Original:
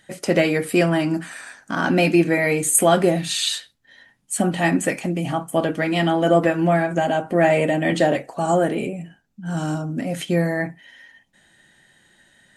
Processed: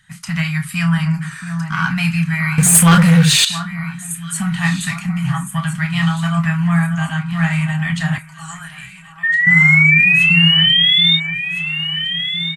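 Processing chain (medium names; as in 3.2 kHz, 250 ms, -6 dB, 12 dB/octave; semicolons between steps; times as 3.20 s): 9.23–11.17 s: painted sound rise 1.8–3.7 kHz -13 dBFS; on a send: echo whose repeats swap between lows and highs 680 ms, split 1.6 kHz, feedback 63%, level -7.5 dB; on the sum: level rider gain up to 3 dB; elliptic band-stop 160–1100 Hz, stop band 80 dB; tilt shelf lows +4.5 dB, about 1.2 kHz; doubling 31 ms -10 dB; 2.58–3.45 s: waveshaping leveller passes 3; 8.18–9.47 s: amplifier tone stack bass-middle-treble 10-0-10; trim +3.5 dB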